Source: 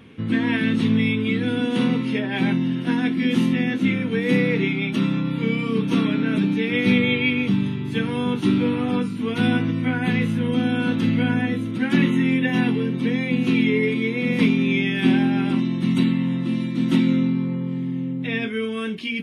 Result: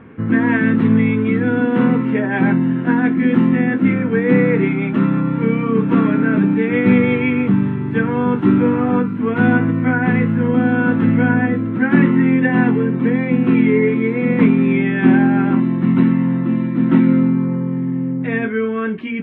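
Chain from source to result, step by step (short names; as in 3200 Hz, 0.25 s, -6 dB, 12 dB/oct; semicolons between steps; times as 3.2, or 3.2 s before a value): EQ curve 190 Hz 0 dB, 1600 Hz +4 dB, 5200 Hz -30 dB; gain +5.5 dB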